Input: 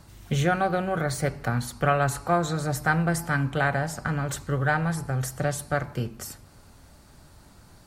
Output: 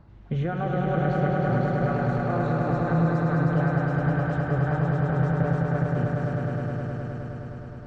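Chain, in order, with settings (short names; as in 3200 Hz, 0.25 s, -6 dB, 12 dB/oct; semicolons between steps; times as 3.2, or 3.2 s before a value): limiter -17 dBFS, peak gain reduction 9 dB; tape spacing loss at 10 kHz 45 dB; swelling echo 0.104 s, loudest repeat 5, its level -4 dB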